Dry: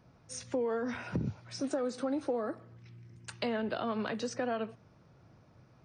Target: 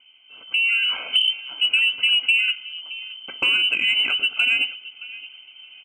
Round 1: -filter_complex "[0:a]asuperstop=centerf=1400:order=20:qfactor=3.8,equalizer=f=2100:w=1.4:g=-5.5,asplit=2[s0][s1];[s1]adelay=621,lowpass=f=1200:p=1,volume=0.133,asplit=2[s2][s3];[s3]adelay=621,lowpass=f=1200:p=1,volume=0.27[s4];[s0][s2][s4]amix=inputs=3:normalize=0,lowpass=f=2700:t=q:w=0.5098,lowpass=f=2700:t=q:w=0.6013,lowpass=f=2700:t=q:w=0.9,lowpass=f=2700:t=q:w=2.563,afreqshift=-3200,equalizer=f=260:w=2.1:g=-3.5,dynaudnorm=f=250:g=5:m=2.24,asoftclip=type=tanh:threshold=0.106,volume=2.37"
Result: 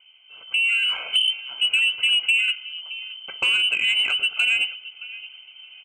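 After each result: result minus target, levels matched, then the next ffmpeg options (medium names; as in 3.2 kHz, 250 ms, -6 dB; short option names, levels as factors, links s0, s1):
250 Hz band -7.5 dB; saturation: distortion +10 dB
-filter_complex "[0:a]asuperstop=centerf=1400:order=20:qfactor=3.8,equalizer=f=2100:w=1.4:g=-5.5,asplit=2[s0][s1];[s1]adelay=621,lowpass=f=1200:p=1,volume=0.133,asplit=2[s2][s3];[s3]adelay=621,lowpass=f=1200:p=1,volume=0.27[s4];[s0][s2][s4]amix=inputs=3:normalize=0,lowpass=f=2700:t=q:w=0.5098,lowpass=f=2700:t=q:w=0.6013,lowpass=f=2700:t=q:w=0.9,lowpass=f=2700:t=q:w=2.563,afreqshift=-3200,equalizer=f=260:w=2.1:g=8.5,dynaudnorm=f=250:g=5:m=2.24,asoftclip=type=tanh:threshold=0.106,volume=2.37"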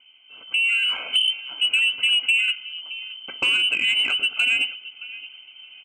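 saturation: distortion +10 dB
-filter_complex "[0:a]asuperstop=centerf=1400:order=20:qfactor=3.8,equalizer=f=2100:w=1.4:g=-5.5,asplit=2[s0][s1];[s1]adelay=621,lowpass=f=1200:p=1,volume=0.133,asplit=2[s2][s3];[s3]adelay=621,lowpass=f=1200:p=1,volume=0.27[s4];[s0][s2][s4]amix=inputs=3:normalize=0,lowpass=f=2700:t=q:w=0.5098,lowpass=f=2700:t=q:w=0.6013,lowpass=f=2700:t=q:w=0.9,lowpass=f=2700:t=q:w=2.563,afreqshift=-3200,equalizer=f=260:w=2.1:g=8.5,dynaudnorm=f=250:g=5:m=2.24,asoftclip=type=tanh:threshold=0.211,volume=2.37"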